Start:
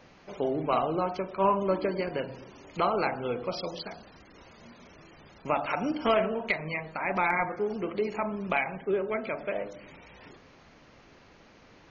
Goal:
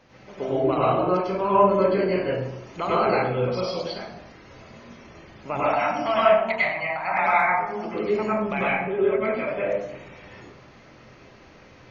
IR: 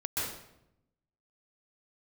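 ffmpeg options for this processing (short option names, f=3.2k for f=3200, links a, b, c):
-filter_complex "[0:a]asettb=1/sr,asplit=3[a][b][c];[a]atrim=end=5.594[d];[b]atrim=start=5.59:end=7.85,asetpts=PTS-STARTPTS,afade=t=in:d=0.004:c=qsin,afade=t=out:st=2.256:d=0.004:c=qsin,lowshelf=f=570:t=q:w=3:g=-7[e];[c]atrim=start=7.846[f];[d][e]acrossfade=d=0.004:c1=hsin:c2=qsin[g];[g][f]acrossfade=d=0.004:c1=qsin:c2=hsin[h];[1:a]atrim=start_sample=2205,asetrate=57330,aresample=44100[i];[h][i]afir=irnorm=-1:irlink=0,volume=2dB"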